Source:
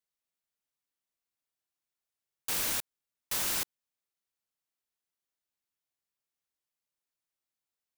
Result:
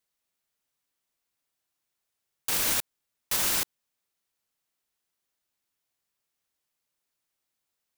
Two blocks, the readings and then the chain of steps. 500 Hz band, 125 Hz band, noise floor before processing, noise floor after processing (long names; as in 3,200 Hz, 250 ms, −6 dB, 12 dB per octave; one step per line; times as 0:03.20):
+5.0 dB, +5.0 dB, below −85 dBFS, −83 dBFS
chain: brickwall limiter −23.5 dBFS, peak gain reduction 5 dB
level +7.5 dB